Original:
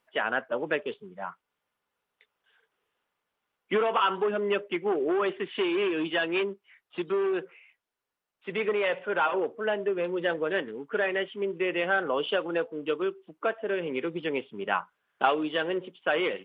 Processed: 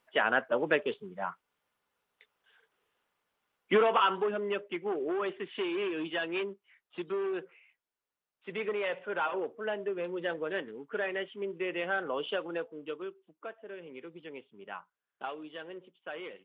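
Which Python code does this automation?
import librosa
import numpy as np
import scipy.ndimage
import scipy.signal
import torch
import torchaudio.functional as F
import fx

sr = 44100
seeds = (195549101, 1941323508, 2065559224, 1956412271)

y = fx.gain(x, sr, db=fx.line((3.81, 1.0), (4.5, -6.0), (12.43, -6.0), (13.55, -15.0)))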